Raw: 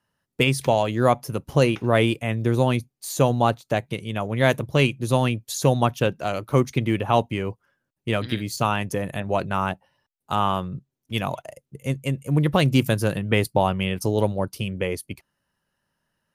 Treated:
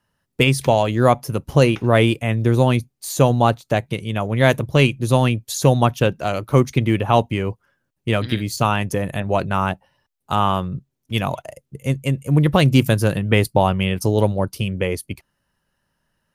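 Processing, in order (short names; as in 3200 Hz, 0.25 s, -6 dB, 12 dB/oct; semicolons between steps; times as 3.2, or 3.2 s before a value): low shelf 65 Hz +9 dB; gain +3.5 dB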